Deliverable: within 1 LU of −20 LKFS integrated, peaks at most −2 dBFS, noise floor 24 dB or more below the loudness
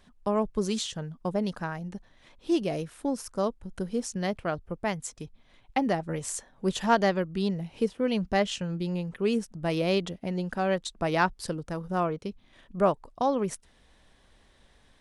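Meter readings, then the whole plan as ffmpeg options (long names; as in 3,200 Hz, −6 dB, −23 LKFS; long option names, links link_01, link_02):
integrated loudness −29.5 LKFS; sample peak −10.5 dBFS; target loudness −20.0 LKFS
→ -af "volume=9.5dB,alimiter=limit=-2dB:level=0:latency=1"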